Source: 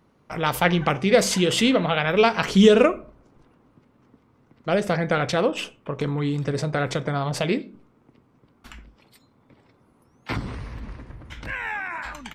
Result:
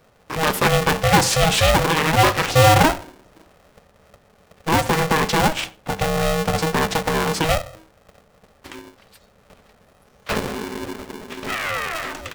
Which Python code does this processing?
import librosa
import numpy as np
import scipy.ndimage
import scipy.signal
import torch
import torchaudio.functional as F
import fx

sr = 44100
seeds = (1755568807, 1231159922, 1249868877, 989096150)

y = 10.0 ** (-13.0 / 20.0) * np.tanh(x / 10.0 ** (-13.0 / 20.0))
y = y * np.sign(np.sin(2.0 * np.pi * 320.0 * np.arange(len(y)) / sr))
y = y * librosa.db_to_amplitude(5.0)